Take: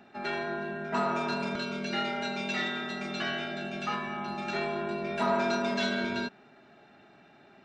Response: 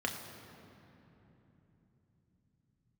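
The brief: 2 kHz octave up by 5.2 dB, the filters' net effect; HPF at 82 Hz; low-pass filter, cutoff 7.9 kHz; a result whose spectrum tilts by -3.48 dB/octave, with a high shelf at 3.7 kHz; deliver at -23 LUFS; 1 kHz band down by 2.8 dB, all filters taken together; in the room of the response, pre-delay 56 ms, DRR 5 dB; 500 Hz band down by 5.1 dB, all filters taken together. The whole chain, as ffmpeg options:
-filter_complex "[0:a]highpass=82,lowpass=7900,equalizer=f=500:t=o:g=-6.5,equalizer=f=1000:t=o:g=-5,equalizer=f=2000:t=o:g=6.5,highshelf=f=3700:g=8,asplit=2[s0][s1];[1:a]atrim=start_sample=2205,adelay=56[s2];[s1][s2]afir=irnorm=-1:irlink=0,volume=0.316[s3];[s0][s3]amix=inputs=2:normalize=0,volume=1.88"

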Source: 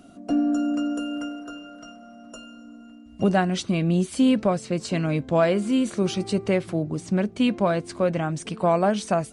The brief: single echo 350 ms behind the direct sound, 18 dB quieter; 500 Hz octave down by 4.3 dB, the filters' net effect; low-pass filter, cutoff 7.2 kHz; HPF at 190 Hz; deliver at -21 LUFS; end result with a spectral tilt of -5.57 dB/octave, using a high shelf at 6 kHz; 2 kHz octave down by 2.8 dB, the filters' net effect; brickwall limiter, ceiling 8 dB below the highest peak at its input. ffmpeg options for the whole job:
-af "highpass=190,lowpass=7200,equalizer=f=500:t=o:g=-5.5,equalizer=f=2000:t=o:g=-4,highshelf=f=6000:g=4,alimiter=limit=0.119:level=0:latency=1,aecho=1:1:350:0.126,volume=2.51"

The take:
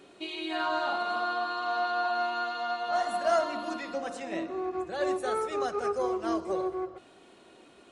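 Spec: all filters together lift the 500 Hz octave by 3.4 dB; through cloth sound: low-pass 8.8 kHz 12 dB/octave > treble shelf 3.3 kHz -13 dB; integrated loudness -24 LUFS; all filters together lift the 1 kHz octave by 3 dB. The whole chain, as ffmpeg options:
-af "lowpass=8800,equalizer=f=500:t=o:g=4,equalizer=f=1000:t=o:g=4,highshelf=f=3300:g=-13,volume=1.58"

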